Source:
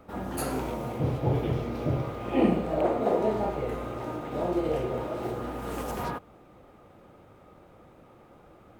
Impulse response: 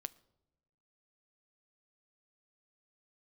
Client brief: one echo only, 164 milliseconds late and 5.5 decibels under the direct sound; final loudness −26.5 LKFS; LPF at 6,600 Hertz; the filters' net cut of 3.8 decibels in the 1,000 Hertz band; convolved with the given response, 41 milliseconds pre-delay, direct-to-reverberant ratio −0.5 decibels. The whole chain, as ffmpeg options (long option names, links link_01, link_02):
-filter_complex "[0:a]lowpass=6600,equalizer=frequency=1000:width_type=o:gain=-5.5,aecho=1:1:164:0.531,asplit=2[link_01][link_02];[1:a]atrim=start_sample=2205,adelay=41[link_03];[link_02][link_03]afir=irnorm=-1:irlink=0,volume=3.5dB[link_04];[link_01][link_04]amix=inputs=2:normalize=0,volume=-0.5dB"